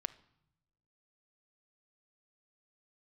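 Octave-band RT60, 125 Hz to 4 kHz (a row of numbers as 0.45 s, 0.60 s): 1.4 s, 1.3 s, 0.85 s, 0.80 s, 0.70 s, 0.65 s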